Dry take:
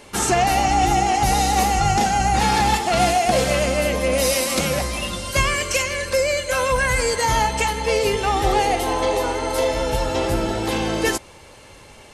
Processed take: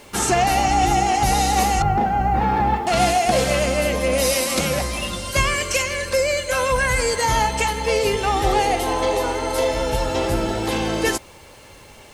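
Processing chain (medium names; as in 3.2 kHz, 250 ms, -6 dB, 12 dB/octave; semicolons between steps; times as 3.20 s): 1.82–2.87 s: low-pass 1.4 kHz 12 dB/octave; bit crusher 9-bit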